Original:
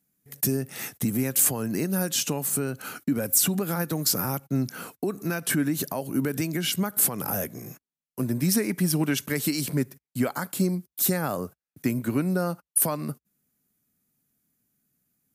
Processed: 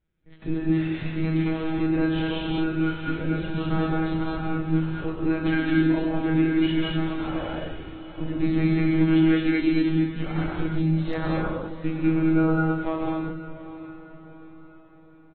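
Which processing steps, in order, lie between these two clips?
delay that plays each chunk backwards 126 ms, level −6.5 dB
in parallel at +1 dB: downward compressor, threshold −32 dBFS, peak gain reduction 14.5 dB
on the sum: double-tracking delay 29 ms −8 dB
one-pitch LPC vocoder at 8 kHz 160 Hz
on a send: feedback delay with all-pass diffusion 715 ms, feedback 45%, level −14.5 dB
on the sum: harmonic and percussive parts rebalanced percussive −13 dB
reverb whose tail is shaped and stops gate 250 ms rising, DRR −1 dB
level −2.5 dB
AAC 24 kbit/s 32,000 Hz

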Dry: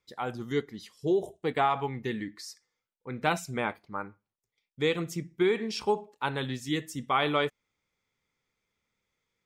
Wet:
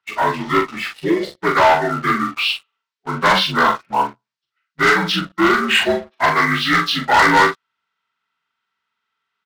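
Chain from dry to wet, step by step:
partials spread apart or drawn together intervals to 79%
high-pass filter 84 Hz
flat-topped bell 2,200 Hz +13.5 dB 2.9 octaves
leveller curve on the samples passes 3
double-tracking delay 42 ms −5.5 dB

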